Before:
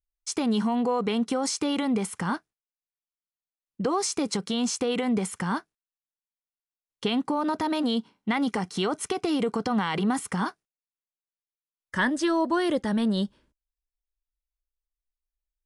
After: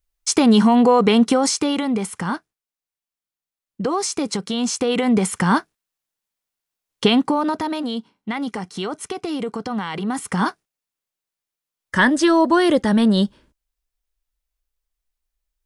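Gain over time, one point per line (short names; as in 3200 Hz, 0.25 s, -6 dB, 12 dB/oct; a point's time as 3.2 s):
1.23 s +11.5 dB
1.86 s +4 dB
4.56 s +4 dB
5.57 s +11.5 dB
7.04 s +11.5 dB
7.86 s 0 dB
10.05 s 0 dB
10.48 s +9 dB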